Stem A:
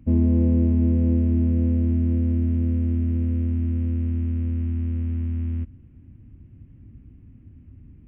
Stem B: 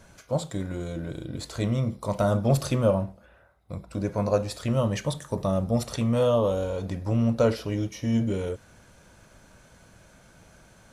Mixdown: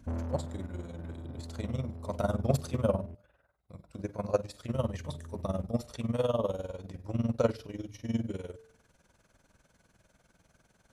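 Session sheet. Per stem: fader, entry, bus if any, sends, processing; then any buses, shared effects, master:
+1.0 dB, 0.00 s, muted 3.15–4.74 s, no send, saturation -27 dBFS, distortion -8 dB; auto duck -9 dB, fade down 0.60 s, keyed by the second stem
-1.5 dB, 0.00 s, no send, de-hum 106.5 Hz, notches 2; AM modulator 20 Hz, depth 65%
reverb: none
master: de-hum 148.9 Hz, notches 4; upward expansion 1.5:1, over -36 dBFS

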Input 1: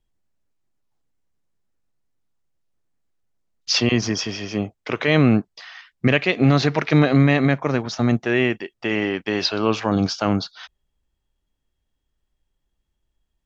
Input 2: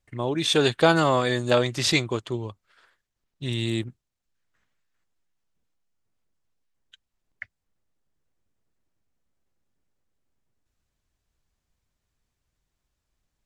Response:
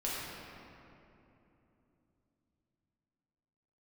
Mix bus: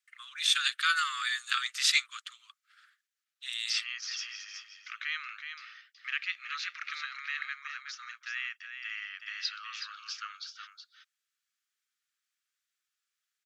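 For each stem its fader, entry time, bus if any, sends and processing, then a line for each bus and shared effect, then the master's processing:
-11.5 dB, 0.00 s, no send, echo send -7.5 dB, none
-1.5 dB, 0.00 s, no send, no echo send, none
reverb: none
echo: delay 371 ms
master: steep high-pass 1.2 kHz 96 dB/octave

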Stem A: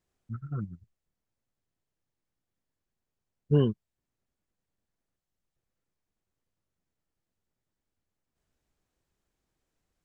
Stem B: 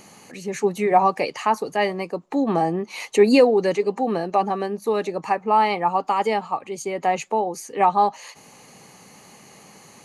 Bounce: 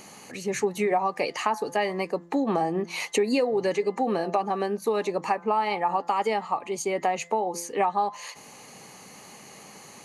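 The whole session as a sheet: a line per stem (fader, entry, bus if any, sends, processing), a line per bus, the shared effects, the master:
-19.0 dB, 0.00 s, no send, none
+1.5 dB, 0.00 s, no send, de-hum 171.4 Hz, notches 12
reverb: none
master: bass shelf 220 Hz -4.5 dB; compression 6:1, threshold -21 dBFS, peak gain reduction 11.5 dB

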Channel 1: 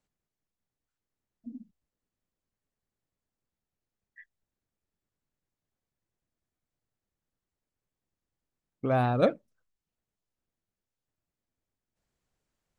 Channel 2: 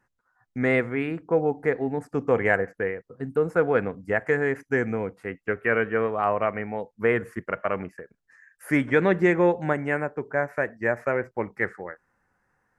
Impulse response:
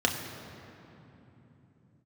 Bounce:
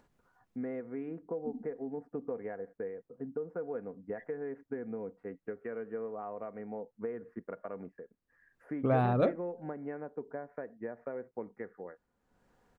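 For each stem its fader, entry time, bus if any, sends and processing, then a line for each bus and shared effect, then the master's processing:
+0.5 dB, 0.00 s, no send, compression, threshold -23 dBFS, peak gain reduction 6 dB
-6.5 dB, 0.00 s, no send, comb 4.2 ms, depth 31%; compression 6:1, threshold -27 dBFS, peak gain reduction 13 dB; band-pass filter 360 Hz, Q 0.66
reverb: none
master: treble shelf 2.9 kHz -10 dB; upward compressor, threshold -57 dBFS

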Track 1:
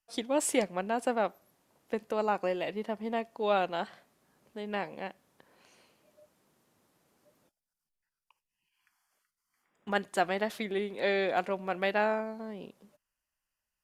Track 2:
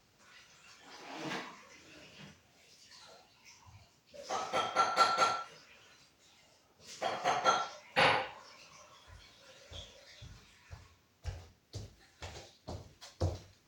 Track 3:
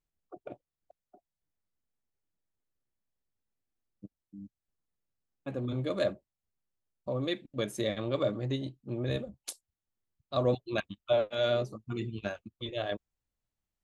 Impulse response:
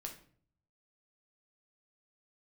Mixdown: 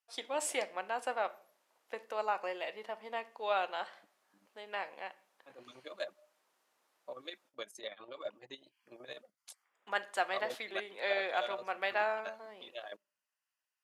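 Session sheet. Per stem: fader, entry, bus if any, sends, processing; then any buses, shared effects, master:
-4.5 dB, 0.00 s, send -3 dB, none
mute
-4.0 dB, 0.00 s, no send, reverb removal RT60 0.71 s; square tremolo 12 Hz, depth 60%, duty 55%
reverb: on, RT60 0.50 s, pre-delay 6 ms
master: high-pass 710 Hz 12 dB/octave; treble shelf 7.6 kHz -6.5 dB

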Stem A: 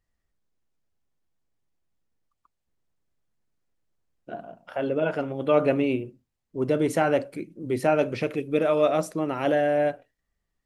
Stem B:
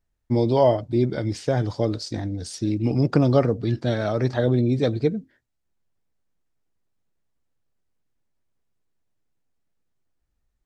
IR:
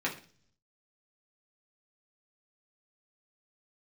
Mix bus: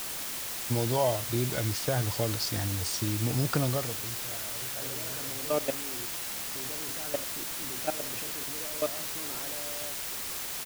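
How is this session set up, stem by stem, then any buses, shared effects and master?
-7.0 dB, 0.00 s, no send, level held to a coarse grid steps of 19 dB
+2.5 dB, 0.40 s, no send, peaking EQ 290 Hz -10.5 dB 2.3 oct; compression 2:1, threshold -30 dBFS, peak gain reduction 6.5 dB; auto duck -19 dB, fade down 0.65 s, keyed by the first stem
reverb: none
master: word length cut 6-bit, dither triangular

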